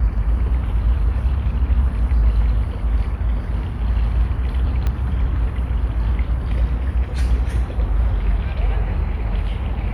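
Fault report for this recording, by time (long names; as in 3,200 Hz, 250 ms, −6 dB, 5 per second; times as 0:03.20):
0:04.87: click −12 dBFS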